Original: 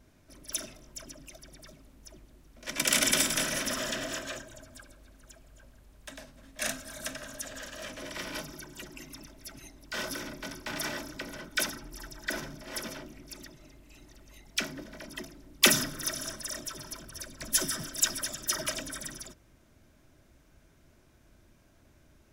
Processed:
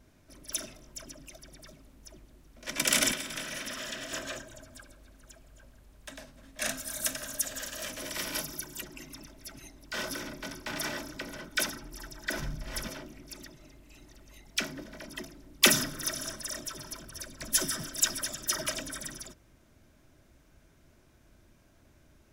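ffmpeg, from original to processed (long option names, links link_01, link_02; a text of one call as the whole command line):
ffmpeg -i in.wav -filter_complex "[0:a]asettb=1/sr,asplit=3[link_01][link_02][link_03];[link_01]atrim=end=3.124[link_04];[link_02]atrim=start=3.12:end=4.13,asetpts=PTS-STARTPTS,afade=type=in:duration=0.004:curve=qsin,afade=type=out:start_time=1.006:duration=0.004:curve=qsin,acrossover=split=1700|4000[link_05][link_06][link_07];[link_05]acompressor=threshold=-43dB:ratio=4[link_08];[link_06]acompressor=threshold=-39dB:ratio=4[link_09];[link_07]acompressor=threshold=-43dB:ratio=4[link_10];[link_08][link_09][link_10]amix=inputs=3:normalize=0[link_11];[link_03]atrim=start=4.126[link_12];[link_04][link_11]acrossfade=duration=0.004:curve1=hsin:curve2=qsin[link_13];[link_13][link_12]acrossfade=duration=0.004:curve1=qsin:curve2=hsin,asettb=1/sr,asplit=3[link_14][link_15][link_16];[link_14]atrim=end=6.774[link_17];[link_15]atrim=start=6.77:end=8.81,asetpts=PTS-STARTPTS,afade=type=in:duration=0.004:curve=qsin,afade=type=out:start_time=2.036:duration=0.004:curve=qsin,aemphasis=mode=production:type=50kf[link_18];[link_16]atrim=start=8.806[link_19];[link_17][link_18]acrossfade=duration=0.004:curve1=hsin:curve2=qsin[link_20];[link_20][link_19]acrossfade=duration=0.004:curve1=qsin:curve2=hsin,asplit=3[link_21][link_22][link_23];[link_21]afade=type=out:start_time=12.38:duration=0.02[link_24];[link_22]asubboost=boost=5.5:cutoff=130,afade=type=in:start_time=12.38:duration=0.02,afade=type=out:start_time=12.87:duration=0.02[link_25];[link_23]afade=type=in:start_time=12.87:duration=0.02[link_26];[link_24][link_25][link_26]amix=inputs=3:normalize=0" out.wav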